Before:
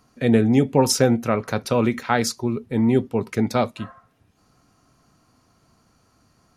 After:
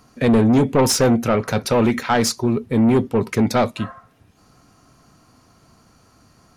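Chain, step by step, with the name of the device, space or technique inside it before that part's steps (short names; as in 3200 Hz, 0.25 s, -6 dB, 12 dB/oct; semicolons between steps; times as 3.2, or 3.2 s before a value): saturation between pre-emphasis and de-emphasis (high shelf 8400 Hz +11.5 dB; soft clip -17 dBFS, distortion -10 dB; high shelf 8400 Hz -11.5 dB); gain +7 dB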